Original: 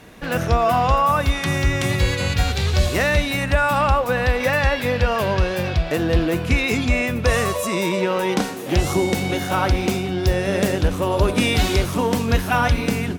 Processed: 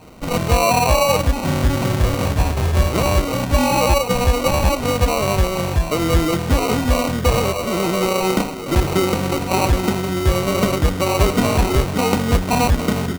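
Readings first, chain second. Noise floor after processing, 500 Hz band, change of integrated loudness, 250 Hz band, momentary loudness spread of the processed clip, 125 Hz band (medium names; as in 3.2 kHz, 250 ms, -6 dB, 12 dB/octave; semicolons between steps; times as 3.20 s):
-25 dBFS, +2.0 dB, +2.0 dB, +2.5 dB, 4 LU, +2.0 dB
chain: sample-and-hold 26×; trim +2 dB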